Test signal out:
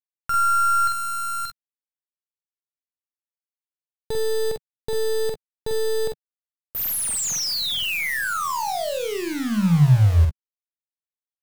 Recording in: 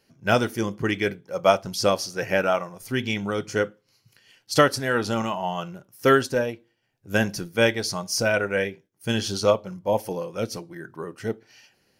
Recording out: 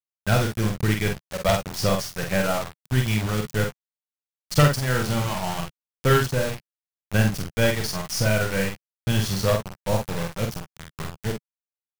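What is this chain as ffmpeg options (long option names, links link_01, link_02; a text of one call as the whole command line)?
ffmpeg -i in.wav -filter_complex "[0:a]aeval=exprs='0.668*(cos(1*acos(clip(val(0)/0.668,-1,1)))-cos(1*PI/2))+0.0473*(cos(3*acos(clip(val(0)/0.668,-1,1)))-cos(3*PI/2))+0.266*(cos(4*acos(clip(val(0)/0.668,-1,1)))-cos(4*PI/2))+0.188*(cos(6*acos(clip(val(0)/0.668,-1,1)))-cos(6*PI/2))+0.0211*(cos(8*acos(clip(val(0)/0.668,-1,1)))-cos(8*PI/2))':channel_layout=same,acrusher=bits=4:mix=0:aa=0.000001,lowshelf=frequency=210:width_type=q:width=1.5:gain=9,asplit=2[link_01][link_02];[link_02]aecho=0:1:47|61:0.631|0.178[link_03];[link_01][link_03]amix=inputs=2:normalize=0,volume=-1.5dB" out.wav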